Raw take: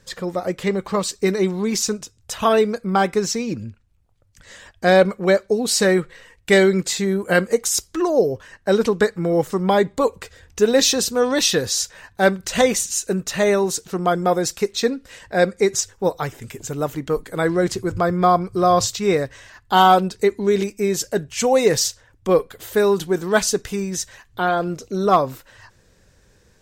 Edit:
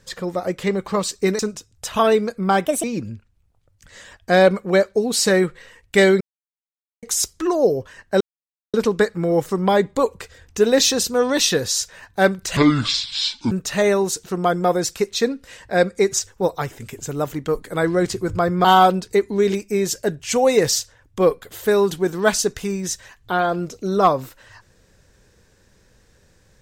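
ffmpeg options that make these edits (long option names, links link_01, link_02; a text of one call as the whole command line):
ffmpeg -i in.wav -filter_complex "[0:a]asplit=10[link_01][link_02][link_03][link_04][link_05][link_06][link_07][link_08][link_09][link_10];[link_01]atrim=end=1.392[link_11];[link_02]atrim=start=1.848:end=3.114[link_12];[link_03]atrim=start=3.11:end=3.38,asetpts=PTS-STARTPTS,asetrate=63945,aresample=44100[link_13];[link_04]atrim=start=3.376:end=6.75,asetpts=PTS-STARTPTS,afade=type=out:start_time=3.37:duration=0.004:curve=hsin[link_14];[link_05]atrim=start=6.75:end=7.57,asetpts=PTS-STARTPTS,volume=0[link_15];[link_06]atrim=start=7.57:end=8.75,asetpts=PTS-STARTPTS,afade=type=in:duration=0.004:curve=hsin,afade=type=out:start_time=1.176:duration=0.004:curve=hsin,apad=pad_dur=0.53[link_16];[link_07]atrim=start=8.75:end=12.584,asetpts=PTS-STARTPTS,afade=type=in:duration=0.004:curve=hsin[link_17];[link_08]atrim=start=12.58:end=13.13,asetpts=PTS-STARTPTS,asetrate=25578,aresample=44100[link_18];[link_09]atrim=start=13.126:end=18.262[link_19];[link_10]atrim=start=19.728[link_20];[link_11][link_12]acrossfade=duration=0.004:curve1=hsin:curve2=hsin[link_21];[link_21][link_13]acrossfade=duration=0.004:curve1=hsin:curve2=hsin[link_22];[link_14][link_15][link_16][link_17]concat=n=4:v=0:a=1[link_23];[link_22][link_23]acrossfade=duration=0.004:curve1=hsin:curve2=hsin[link_24];[link_24][link_18]acrossfade=duration=0.004:curve1=hsin:curve2=hsin[link_25];[link_25][link_19]acrossfade=duration=0.004:curve1=hsin:curve2=hsin[link_26];[link_26][link_20]acrossfade=duration=0.004:curve1=hsin:curve2=hsin" out.wav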